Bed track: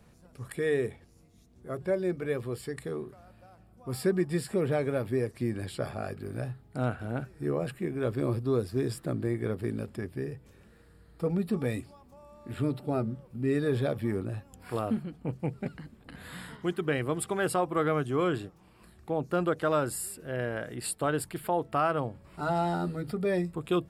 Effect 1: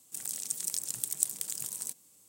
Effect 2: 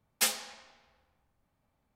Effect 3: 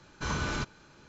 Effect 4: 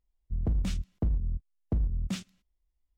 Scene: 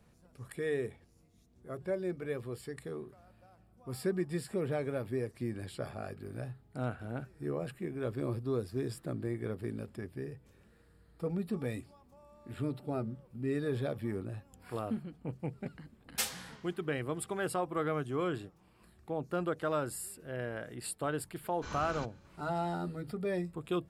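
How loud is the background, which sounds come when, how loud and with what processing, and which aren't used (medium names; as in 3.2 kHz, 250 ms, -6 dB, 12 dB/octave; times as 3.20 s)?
bed track -6 dB
15.97 s: add 2 -6 dB
21.41 s: add 3 -11 dB
not used: 1, 4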